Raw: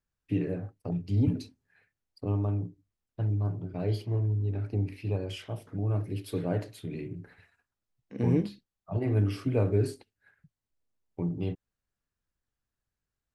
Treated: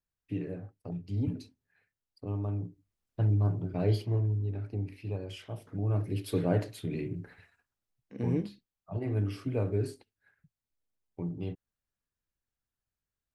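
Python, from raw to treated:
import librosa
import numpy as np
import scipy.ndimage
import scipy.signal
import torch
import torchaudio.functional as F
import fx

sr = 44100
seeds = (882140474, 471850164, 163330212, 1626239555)

y = fx.gain(x, sr, db=fx.line((2.27, -6.0), (3.2, 2.5), (3.9, 2.5), (4.69, -5.0), (5.32, -5.0), (6.3, 2.5), (7.19, 2.5), (8.22, -4.5)))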